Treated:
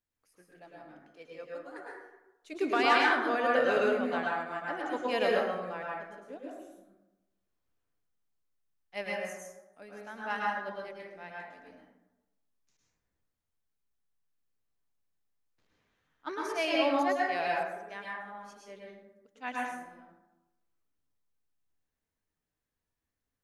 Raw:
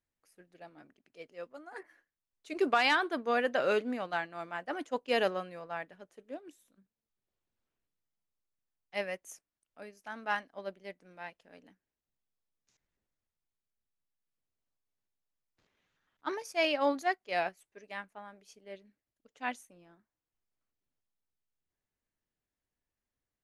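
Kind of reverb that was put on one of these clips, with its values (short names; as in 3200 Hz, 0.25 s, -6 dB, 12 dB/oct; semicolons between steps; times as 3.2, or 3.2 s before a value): plate-style reverb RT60 1 s, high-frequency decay 0.45×, pre-delay 95 ms, DRR -4 dB; gain -3 dB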